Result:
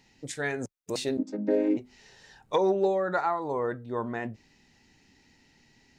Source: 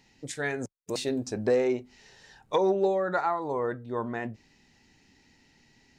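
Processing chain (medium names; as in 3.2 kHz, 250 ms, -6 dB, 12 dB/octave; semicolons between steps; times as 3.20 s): 1.17–1.77 s: vocoder on a held chord major triad, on G#3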